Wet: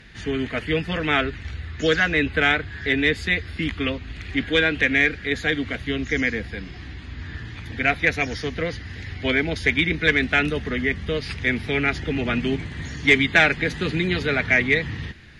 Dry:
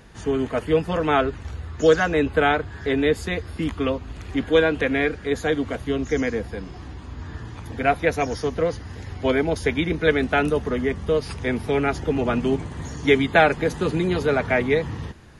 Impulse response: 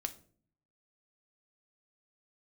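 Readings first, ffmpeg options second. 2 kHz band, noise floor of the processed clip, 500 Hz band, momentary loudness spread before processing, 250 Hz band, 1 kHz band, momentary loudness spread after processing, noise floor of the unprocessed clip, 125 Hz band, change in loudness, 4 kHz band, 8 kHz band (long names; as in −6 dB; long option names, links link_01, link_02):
+6.0 dB, −38 dBFS, −5.5 dB, 15 LU, −1.5 dB, −5.0 dB, 16 LU, −39 dBFS, 0.0 dB, +0.5 dB, +6.0 dB, −1.5 dB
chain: -af "equalizer=frequency=500:width_type=o:width=1:gain=-5,equalizer=frequency=1000:width_type=o:width=1:gain=-9,equalizer=frequency=2000:width_type=o:width=1:gain=11,equalizer=frequency=4000:width_type=o:width=1:gain=8,asoftclip=type=tanh:threshold=-4dB,aemphasis=mode=reproduction:type=cd"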